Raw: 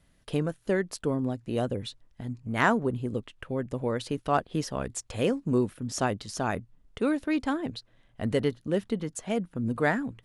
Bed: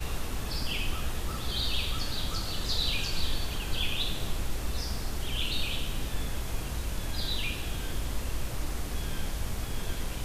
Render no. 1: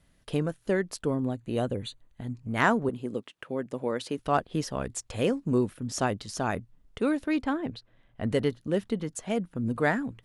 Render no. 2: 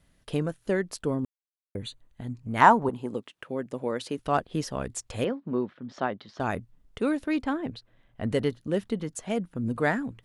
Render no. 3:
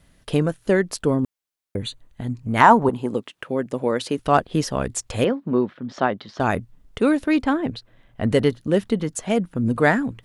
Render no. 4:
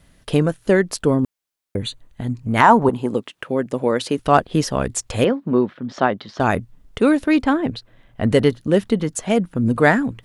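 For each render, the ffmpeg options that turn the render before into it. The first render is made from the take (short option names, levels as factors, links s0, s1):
-filter_complex "[0:a]asettb=1/sr,asplit=3[s0][s1][s2];[s0]atrim=end=1.154[s3];[s1]atrim=start=1.15:end=2.37,asetpts=PTS-STARTPTS,afade=t=in:d=0.004:c=qsin,afade=t=out:st=1.216:d=0.004:c=qsin,asuperstop=centerf=5300:order=8:qfactor=4.7[s4];[s2]atrim=start=2.366[s5];[s3][s4]acrossfade=d=0.004:c1=hsin:c2=qsin[s6];[s6][s5]acrossfade=d=0.004:c1=qsin:c2=hsin,asettb=1/sr,asplit=3[s7][s8][s9];[s7]atrim=end=2.894[s10];[s8]atrim=start=2.89:end=4.19,asetpts=PTS-STARTPTS,afade=t=in:d=0.004:c=qsin,afade=t=out:st=1.296:d=0.004:c=qsin,highpass=200[s11];[s9]atrim=start=4.186[s12];[s10][s11]acrossfade=d=0.004:c1=hsin:c2=qsin[s13];[s13][s12]acrossfade=d=0.004:c1=qsin:c2=hsin,asettb=1/sr,asplit=3[s14][s15][s16];[s14]atrim=end=7.414[s17];[s15]atrim=start=7.41:end=8.32,asetpts=PTS-STARTPTS,afade=t=in:d=0.004:c=qsin,afade=t=out:st=0.906:d=0.004:c=qsin,bass=f=250:g=0,treble=f=4000:g=-9[s18];[s16]atrim=start=8.316[s19];[s17][s18]acrossfade=d=0.004:c1=hsin:c2=qsin[s20];[s20][s19]acrossfade=d=0.004:c1=qsin:c2=hsin"
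-filter_complex "[0:a]asettb=1/sr,asplit=3[s0][s1][s2];[s0]atrim=end=2.614[s3];[s1]atrim=start=2.61:end=3.16,asetpts=PTS-STARTPTS,afade=t=in:d=0.004:c=qsin,afade=t=out:st=0.546:d=0.004:c=qsin,equalizer=f=900:t=o:w=0.58:g=13.5[s4];[s2]atrim=start=3.156[s5];[s3][s4]acrossfade=d=0.004:c1=hsin:c2=qsin[s6];[s6][s5]acrossfade=d=0.004:c1=qsin:c2=hsin,asettb=1/sr,asplit=3[s7][s8][s9];[s7]atrim=end=5.244[s10];[s8]atrim=start=5.24:end=6.4,asetpts=PTS-STARTPTS,afade=t=in:d=0.004:c=qsin,afade=t=out:st=1.156:d=0.004:c=qsin,highpass=220,equalizer=f=300:t=q:w=4:g=-4,equalizer=f=450:t=q:w=4:g=-4,equalizer=f=2600:t=q:w=4:g=-7,lowpass=f=3500:w=0.5412,lowpass=f=3500:w=1.3066[s11];[s9]atrim=start=6.396[s12];[s10][s11]acrossfade=d=0.004:c1=hsin:c2=qsin[s13];[s13][s12]acrossfade=d=0.004:c1=qsin:c2=hsin,asplit=3[s14][s15][s16];[s14]atrim=end=1.25,asetpts=PTS-STARTPTS,afade=t=out:st=1.246:d=0.004:c=hsin[s17];[s15]atrim=start=1.25:end=1.75,asetpts=PTS-STARTPTS,volume=0[s18];[s16]atrim=start=1.75,asetpts=PTS-STARTPTS,afade=t=in:d=0.004:c=hsin[s19];[s17][s18][s19]concat=n=3:v=0:a=1"
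-af "alimiter=level_in=2.51:limit=0.891:release=50:level=0:latency=1"
-af "volume=1.41,alimiter=limit=0.891:level=0:latency=1"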